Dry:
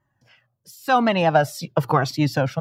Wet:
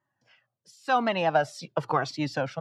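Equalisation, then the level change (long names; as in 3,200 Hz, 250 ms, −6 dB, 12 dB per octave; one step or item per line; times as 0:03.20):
high-pass filter 100 Hz
Bessel low-pass filter 6,700 Hz, order 6
low-shelf EQ 200 Hz −10 dB
−5.0 dB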